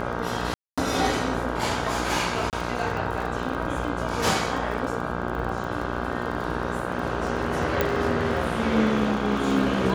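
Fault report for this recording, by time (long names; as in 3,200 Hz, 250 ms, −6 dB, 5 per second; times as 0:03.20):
mains buzz 60 Hz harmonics 27 −30 dBFS
surface crackle 32 per second −31 dBFS
0:00.54–0:00.78: drop-out 236 ms
0:02.50–0:02.53: drop-out 28 ms
0:07.81: click −8 dBFS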